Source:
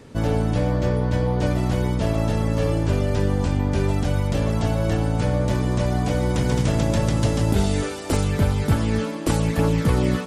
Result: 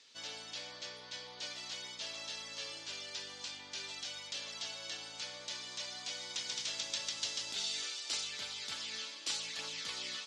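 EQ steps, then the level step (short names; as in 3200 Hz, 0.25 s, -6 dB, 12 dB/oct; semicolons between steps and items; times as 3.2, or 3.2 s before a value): Butterworth band-pass 5000 Hz, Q 1.4; tilt -4.5 dB/oct; +10.5 dB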